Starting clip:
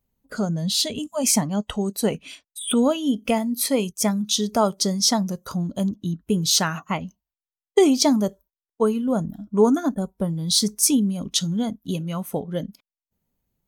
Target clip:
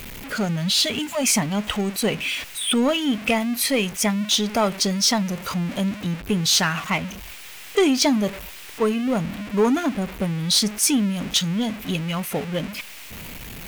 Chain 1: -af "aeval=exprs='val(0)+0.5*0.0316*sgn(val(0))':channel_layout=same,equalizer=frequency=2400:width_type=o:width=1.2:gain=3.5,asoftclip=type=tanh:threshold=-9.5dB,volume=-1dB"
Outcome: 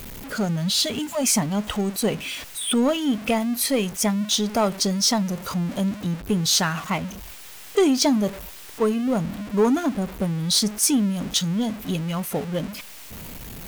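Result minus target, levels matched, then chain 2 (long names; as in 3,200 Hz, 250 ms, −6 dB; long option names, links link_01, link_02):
2,000 Hz band −4.5 dB
-af "aeval=exprs='val(0)+0.5*0.0316*sgn(val(0))':channel_layout=same,equalizer=frequency=2400:width_type=o:width=1.2:gain=11,asoftclip=type=tanh:threshold=-9.5dB,volume=-1dB"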